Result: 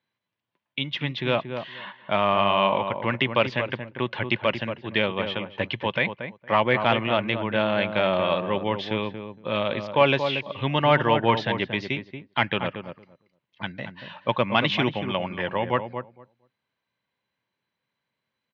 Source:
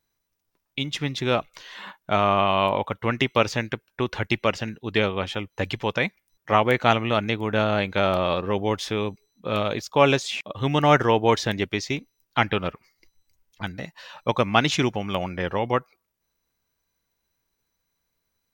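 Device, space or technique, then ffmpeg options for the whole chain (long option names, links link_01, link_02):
overdrive pedal into a guitar cabinet: -filter_complex "[0:a]highpass=100,asplit=2[link_01][link_02];[link_02]adelay=231,lowpass=frequency=1200:poles=1,volume=-7.5dB,asplit=2[link_03][link_04];[link_04]adelay=231,lowpass=frequency=1200:poles=1,volume=0.16,asplit=2[link_05][link_06];[link_06]adelay=231,lowpass=frequency=1200:poles=1,volume=0.16[link_07];[link_01][link_03][link_05][link_07]amix=inputs=4:normalize=0,asplit=2[link_08][link_09];[link_09]highpass=frequency=720:poles=1,volume=10dB,asoftclip=type=tanh:threshold=0dB[link_10];[link_08][link_10]amix=inputs=2:normalize=0,lowpass=frequency=1100:poles=1,volume=-6dB,highpass=98,equalizer=frequency=120:width_type=q:width=4:gain=4,equalizer=frequency=300:width_type=q:width=4:gain=-5,equalizer=frequency=440:width_type=q:width=4:gain=-8,equalizer=frequency=750:width_type=q:width=4:gain=-8,equalizer=frequency=1300:width_type=q:width=4:gain=-8,equalizer=frequency=3100:width_type=q:width=4:gain=4,lowpass=frequency=4200:width=0.5412,lowpass=frequency=4200:width=1.3066,volume=2.5dB"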